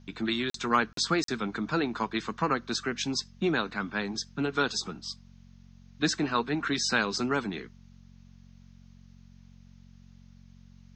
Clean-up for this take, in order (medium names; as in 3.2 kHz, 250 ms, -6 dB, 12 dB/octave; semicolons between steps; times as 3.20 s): de-hum 45.7 Hz, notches 5; interpolate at 0.50/0.93/1.24 s, 43 ms; expander -45 dBFS, range -21 dB